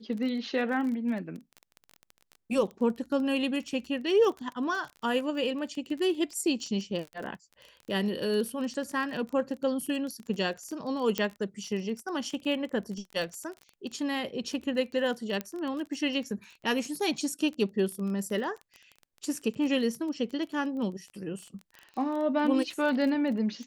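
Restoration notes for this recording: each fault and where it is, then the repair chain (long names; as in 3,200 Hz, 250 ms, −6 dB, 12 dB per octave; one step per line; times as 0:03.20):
surface crackle 22 per second −35 dBFS
0:11.18: click −13 dBFS
0:15.41: click −18 dBFS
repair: click removal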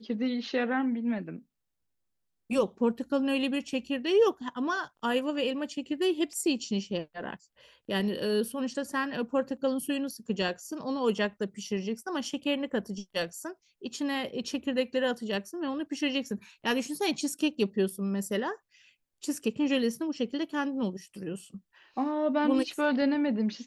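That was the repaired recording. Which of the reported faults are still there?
0:15.41: click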